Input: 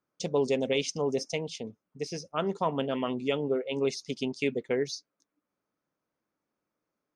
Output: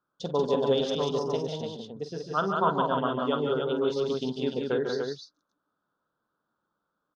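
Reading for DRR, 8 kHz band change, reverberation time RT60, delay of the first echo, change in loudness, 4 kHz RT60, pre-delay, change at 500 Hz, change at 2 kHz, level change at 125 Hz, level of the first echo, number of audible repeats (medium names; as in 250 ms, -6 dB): no reverb, no reading, no reverb, 47 ms, +2.5 dB, no reverb, no reverb, +2.5 dB, -0.5 dB, +3.0 dB, -11.0 dB, 4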